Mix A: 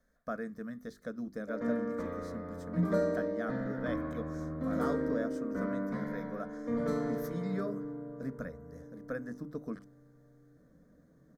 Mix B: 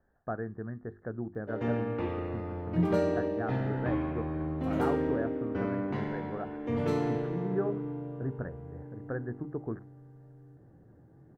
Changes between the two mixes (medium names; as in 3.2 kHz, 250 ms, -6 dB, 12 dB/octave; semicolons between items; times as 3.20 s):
speech: add elliptic low-pass 1.7 kHz; master: remove static phaser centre 550 Hz, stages 8